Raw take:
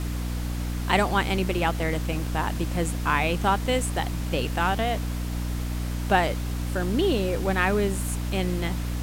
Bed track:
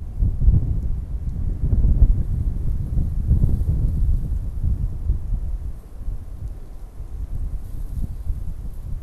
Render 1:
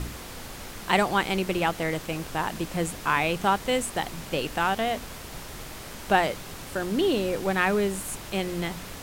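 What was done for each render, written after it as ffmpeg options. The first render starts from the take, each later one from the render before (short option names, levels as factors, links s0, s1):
-af "bandreject=f=60:t=h:w=4,bandreject=f=120:t=h:w=4,bandreject=f=180:t=h:w=4,bandreject=f=240:t=h:w=4,bandreject=f=300:t=h:w=4"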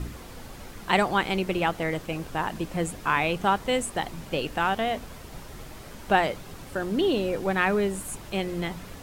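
-af "afftdn=nr=7:nf=-40"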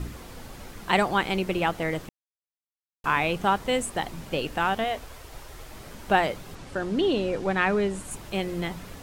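-filter_complex "[0:a]asettb=1/sr,asplit=3[s0][s1][s2];[s0]atrim=end=4.844[s3];[s1]atrim=start=4.84:end=5.73,asetpts=PTS-STARTPTS,afade=t=in:d=0.004:c=qsin,afade=t=out:st=0.886:d=0.004:c=qsin,equalizer=f=190:w=1.5:g=-13.5[s4];[s2]atrim=start=5.726[s5];[s3][s4]acrossfade=d=0.004:c1=hsin:c2=qsin[s6];[s6][s5]acrossfade=d=0.004:c1=qsin:c2=hsin,asettb=1/sr,asplit=3[s7][s8][s9];[s7]atrim=end=6.554[s10];[s8]atrim=start=6.55:end=8.11,asetpts=PTS-STARTPTS,afade=t=in:d=0.004:c=qsin,afade=t=out:st=1.556:d=0.004:c=qsin,lowpass=7800[s11];[s9]atrim=start=8.106[s12];[s10][s11]acrossfade=d=0.004:c1=hsin:c2=qsin[s13];[s13][s12]acrossfade=d=0.004:c1=qsin:c2=hsin,asplit=3[s14][s15][s16];[s14]atrim=end=2.09,asetpts=PTS-STARTPTS,afade=t=out:st=2.086:d=0.004:c=hsin[s17];[s15]atrim=start=2.09:end=3.04,asetpts=PTS-STARTPTS,volume=0[s18];[s16]atrim=start=3.04,asetpts=PTS-STARTPTS,afade=t=in:d=0.004:c=hsin[s19];[s17][s18][s19]concat=n=3:v=0:a=1"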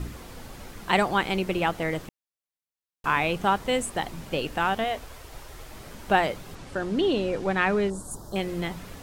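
-filter_complex "[0:a]asettb=1/sr,asplit=3[s0][s1][s2];[s0]atrim=end=7.904[s3];[s1]atrim=start=7.9:end=8.36,asetpts=PTS-STARTPTS,afade=t=in:d=0.004:c=qsin,afade=t=out:st=0.456:d=0.004:c=qsin,asuperstop=centerf=2400:order=4:qfactor=0.69[s4];[s2]atrim=start=8.356[s5];[s3][s4]acrossfade=d=0.004:c1=hsin:c2=qsin[s6];[s6][s5]acrossfade=d=0.004:c1=qsin:c2=hsin"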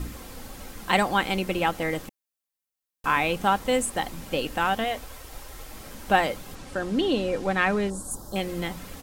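-af "highshelf=f=7600:g=7,aecho=1:1:3.8:0.31"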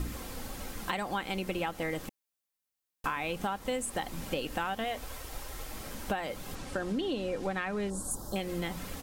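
-af "alimiter=limit=0.251:level=0:latency=1:release=357,acompressor=threshold=0.0316:ratio=6"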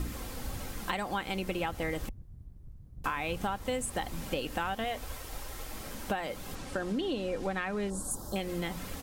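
-filter_complex "[1:a]volume=0.0473[s0];[0:a][s0]amix=inputs=2:normalize=0"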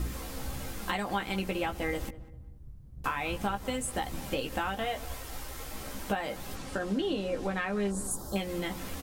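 -filter_complex "[0:a]asplit=2[s0][s1];[s1]adelay=15,volume=0.562[s2];[s0][s2]amix=inputs=2:normalize=0,asplit=2[s3][s4];[s4]adelay=197,lowpass=f=1500:p=1,volume=0.15,asplit=2[s5][s6];[s6]adelay=197,lowpass=f=1500:p=1,volume=0.36,asplit=2[s7][s8];[s8]adelay=197,lowpass=f=1500:p=1,volume=0.36[s9];[s3][s5][s7][s9]amix=inputs=4:normalize=0"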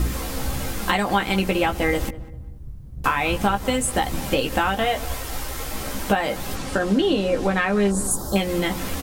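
-af "volume=3.55"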